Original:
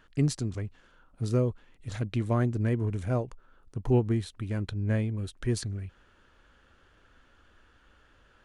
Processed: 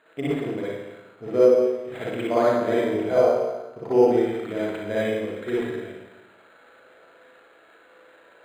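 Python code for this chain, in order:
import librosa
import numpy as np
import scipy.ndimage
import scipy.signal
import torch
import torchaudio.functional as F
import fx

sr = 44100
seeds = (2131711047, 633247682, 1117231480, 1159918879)

y = fx.cabinet(x, sr, low_hz=340.0, low_slope=12, high_hz=6300.0, hz=(450.0, 650.0, 2200.0, 4100.0), db=(7, 8, 8, -7))
y = fx.room_flutter(y, sr, wall_m=6.4, rt60_s=0.37)
y = fx.rev_spring(y, sr, rt60_s=1.1, pass_ms=(53, 59), chirp_ms=25, drr_db=-8.0)
y = np.interp(np.arange(len(y)), np.arange(len(y))[::8], y[::8])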